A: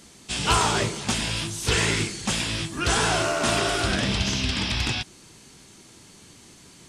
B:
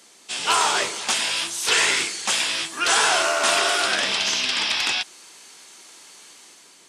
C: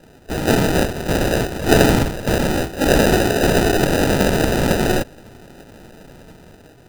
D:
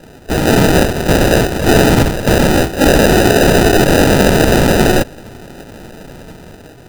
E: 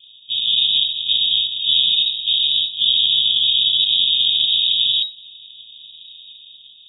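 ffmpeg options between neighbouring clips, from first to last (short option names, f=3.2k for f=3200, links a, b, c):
-filter_complex "[0:a]highpass=460,acrossover=split=670[a][b];[b]dynaudnorm=f=170:g=7:m=5.5dB[c];[a][c]amix=inputs=2:normalize=0"
-af "equalizer=f=1k:t=o:w=1:g=-10,equalizer=f=2k:t=o:w=1:g=3,equalizer=f=8k:t=o:w=1:g=-6,acrusher=samples=40:mix=1:aa=0.000001,volume=7.5dB"
-af "alimiter=level_in=9.5dB:limit=-1dB:release=50:level=0:latency=1,volume=-1dB"
-af "lowpass=f=3.2k:t=q:w=0.5098,lowpass=f=3.2k:t=q:w=0.6013,lowpass=f=3.2k:t=q:w=0.9,lowpass=f=3.2k:t=q:w=2.563,afreqshift=-3800,afftfilt=real='re*(1-between(b*sr/4096,230,2500))':imag='im*(1-between(b*sr/4096,230,2500))':win_size=4096:overlap=0.75,volume=-7dB"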